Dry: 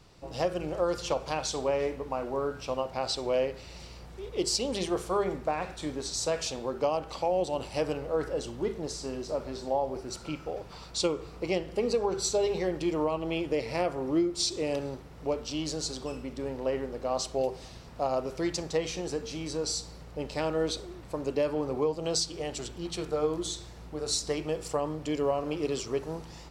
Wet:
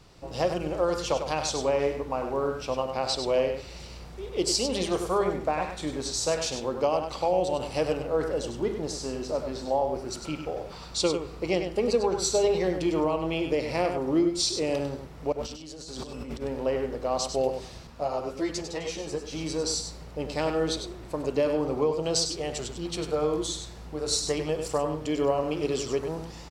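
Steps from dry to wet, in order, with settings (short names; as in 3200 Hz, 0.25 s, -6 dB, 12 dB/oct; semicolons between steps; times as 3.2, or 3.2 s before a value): 15.32–16.42 negative-ratio compressor -43 dBFS, ratio -1; on a send: echo 99 ms -7.5 dB; 17.87–19.33 on the sum: ensemble effect; gain +2.5 dB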